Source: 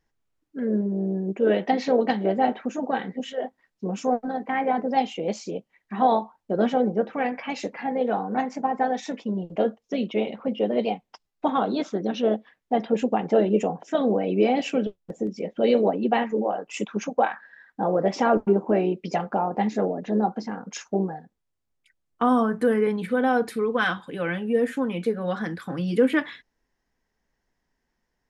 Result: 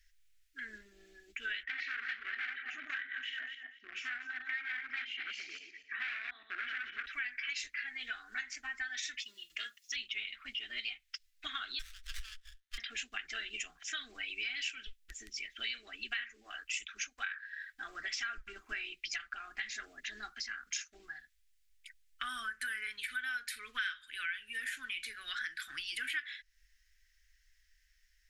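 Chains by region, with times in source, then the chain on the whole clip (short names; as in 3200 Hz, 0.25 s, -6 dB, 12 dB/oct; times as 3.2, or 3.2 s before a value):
1.63–7.06 regenerating reverse delay 0.12 s, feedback 42%, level -5 dB + hard clip -22.5 dBFS + Chebyshev band-pass 240–2000 Hz
9.18–9.96 tilt +3 dB/oct + notches 50/100/150 Hz + notch comb 770 Hz
11.79–12.78 steep high-pass 1100 Hz 72 dB/oct + running maximum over 17 samples
whole clip: inverse Chebyshev band-stop 100–960 Hz, stop band 40 dB; dynamic EQ 1500 Hz, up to +6 dB, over -55 dBFS, Q 4.8; compressor 4:1, threshold -48 dBFS; gain +10 dB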